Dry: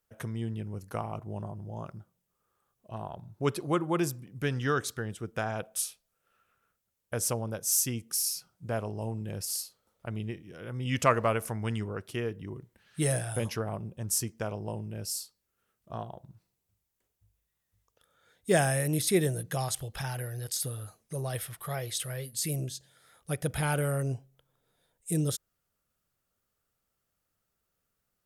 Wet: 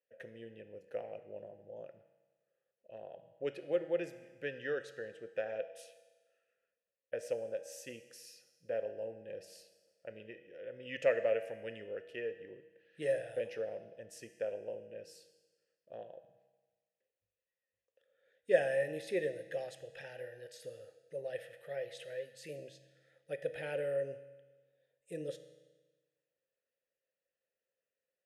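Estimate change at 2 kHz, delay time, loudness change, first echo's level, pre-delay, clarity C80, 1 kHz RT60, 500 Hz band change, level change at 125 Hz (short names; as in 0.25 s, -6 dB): -7.0 dB, none, -7.5 dB, none, 6 ms, 13.0 dB, 1.3 s, -2.0 dB, -23.5 dB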